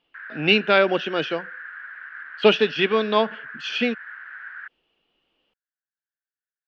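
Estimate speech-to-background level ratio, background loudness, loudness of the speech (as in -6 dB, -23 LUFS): 16.5 dB, -37.5 LUFS, -21.0 LUFS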